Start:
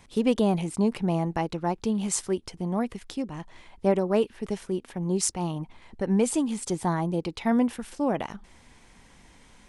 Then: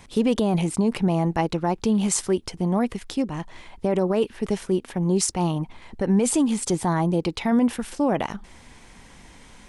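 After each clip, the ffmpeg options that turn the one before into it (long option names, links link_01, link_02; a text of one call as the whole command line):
ffmpeg -i in.wav -af "alimiter=limit=-19dB:level=0:latency=1:release=20,volume=6.5dB" out.wav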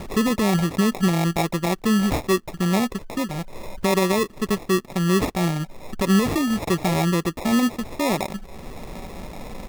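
ffmpeg -i in.wav -af "acompressor=mode=upward:threshold=-23dB:ratio=2.5,aecho=1:1:5.2:0.33,acrusher=samples=29:mix=1:aa=0.000001" out.wav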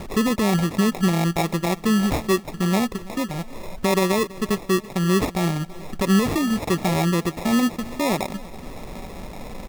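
ffmpeg -i in.wav -af "aecho=1:1:331|662|993|1324:0.1|0.053|0.0281|0.0149" out.wav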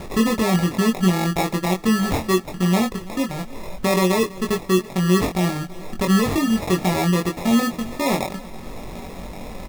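ffmpeg -i in.wav -filter_complex "[0:a]asplit=2[link_01][link_02];[link_02]adelay=22,volume=-4dB[link_03];[link_01][link_03]amix=inputs=2:normalize=0" out.wav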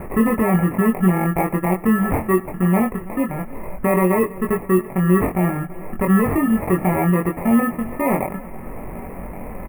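ffmpeg -i in.wav -filter_complex "[0:a]asplit=2[link_01][link_02];[link_02]asoftclip=type=tanh:threshold=-14dB,volume=-10dB[link_03];[link_01][link_03]amix=inputs=2:normalize=0,asuperstop=centerf=4900:order=8:qfactor=0.65,aecho=1:1:99:0.0708" out.wav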